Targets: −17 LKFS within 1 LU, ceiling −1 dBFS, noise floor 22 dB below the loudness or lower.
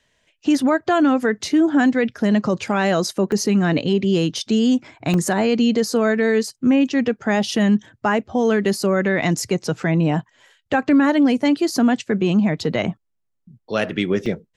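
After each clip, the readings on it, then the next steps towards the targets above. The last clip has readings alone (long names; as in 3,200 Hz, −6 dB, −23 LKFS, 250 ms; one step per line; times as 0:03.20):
number of dropouts 3; longest dropout 1.3 ms; integrated loudness −19.0 LKFS; sample peak −6.5 dBFS; target loudness −17.0 LKFS
→ repair the gap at 0:03.32/0:05.14/0:14.26, 1.3 ms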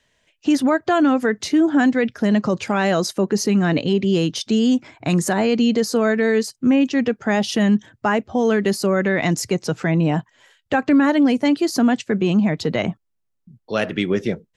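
number of dropouts 0; integrated loudness −19.0 LKFS; sample peak −6.5 dBFS; target loudness −17.0 LKFS
→ level +2 dB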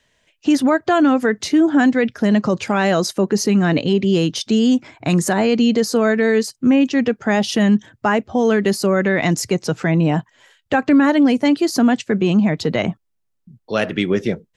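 integrated loudness −17.0 LKFS; sample peak −4.5 dBFS; background noise floor −71 dBFS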